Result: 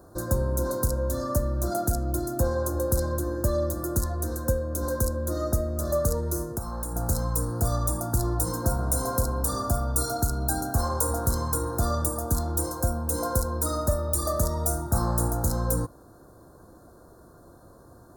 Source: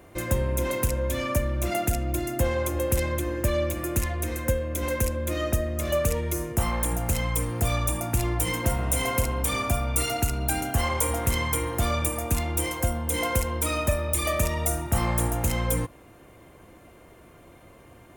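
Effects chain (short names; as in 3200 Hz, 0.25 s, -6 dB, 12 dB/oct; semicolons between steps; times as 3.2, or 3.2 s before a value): elliptic band-stop 1500–4200 Hz, stop band 60 dB; 6.42–6.96 compressor 6:1, threshold -29 dBFS, peak gain reduction 10.5 dB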